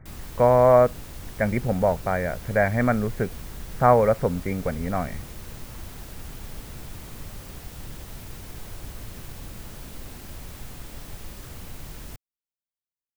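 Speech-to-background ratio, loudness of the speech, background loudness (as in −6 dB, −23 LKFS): 18.5 dB, −22.0 LKFS, −40.5 LKFS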